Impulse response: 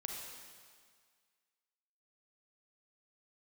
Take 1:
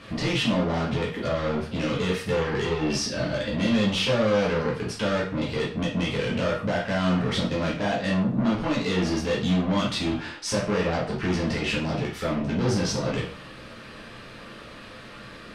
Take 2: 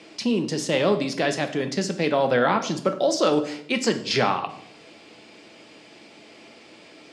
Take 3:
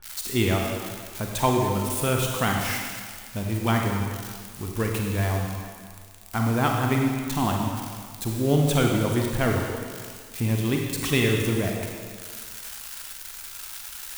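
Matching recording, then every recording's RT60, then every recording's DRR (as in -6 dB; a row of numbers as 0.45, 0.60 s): 3; 0.50, 0.65, 1.8 s; -5.5, 6.5, 0.0 dB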